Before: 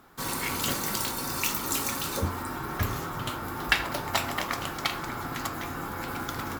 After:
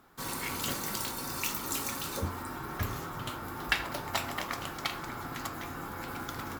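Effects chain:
level −5 dB

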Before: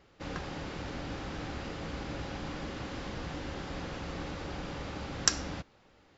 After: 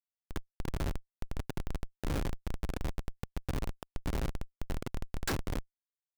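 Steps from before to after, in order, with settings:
delay that plays each chunk backwards 585 ms, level −1.5 dB
high-pass filter 330 Hz 12 dB per octave
all-pass phaser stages 8, 1.5 Hz, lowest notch 540–2,400 Hz
on a send at −22 dB: convolution reverb RT60 0.50 s, pre-delay 5 ms
on the sum: comparator with hysteresis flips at −34.5 dBFS
level +12 dB

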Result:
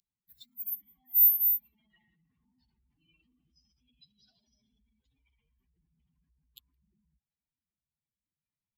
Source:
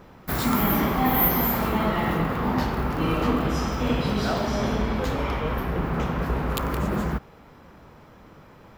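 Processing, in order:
expanding power law on the bin magnitudes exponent 2.8
inverse Chebyshev high-pass filter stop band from 1,400 Hz, stop band 50 dB
level +1 dB

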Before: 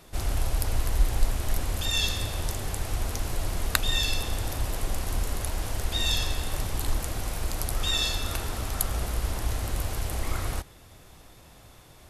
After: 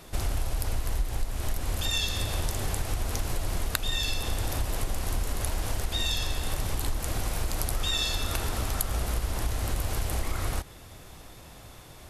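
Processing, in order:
downward compressor 6 to 1, threshold −28 dBFS, peak gain reduction 13 dB
level +4 dB

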